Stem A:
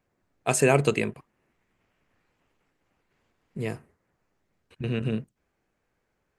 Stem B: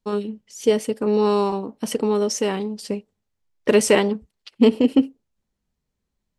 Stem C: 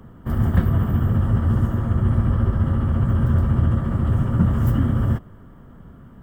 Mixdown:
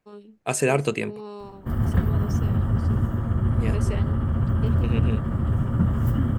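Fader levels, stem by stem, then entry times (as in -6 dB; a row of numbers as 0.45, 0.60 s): -1.0, -19.0, -3.5 dB; 0.00, 0.00, 1.40 s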